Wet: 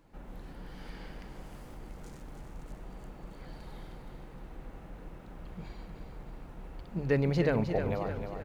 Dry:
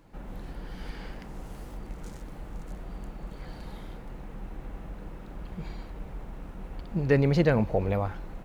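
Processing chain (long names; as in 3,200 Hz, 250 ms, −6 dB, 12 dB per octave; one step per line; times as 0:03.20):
mains-hum notches 50/100/150/200 Hz
on a send: repeating echo 309 ms, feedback 50%, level −7.5 dB
on the sum: level −5 dB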